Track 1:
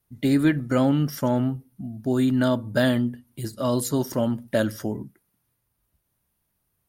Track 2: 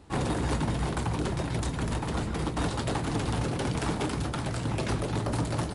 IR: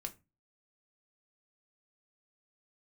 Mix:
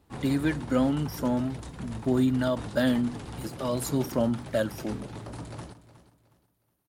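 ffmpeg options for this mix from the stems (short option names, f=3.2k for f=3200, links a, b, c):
-filter_complex "[0:a]highpass=f=100:w=0.5412,highpass=f=100:w=1.3066,aphaser=in_gain=1:out_gain=1:delay=4.6:decay=0.37:speed=0.48:type=sinusoidal,volume=-5.5dB[a];[1:a]volume=-10.5dB,asplit=2[b][c];[c]volume=-15dB,aecho=0:1:365|730|1095|1460:1|0.31|0.0961|0.0298[d];[a][b][d]amix=inputs=3:normalize=0"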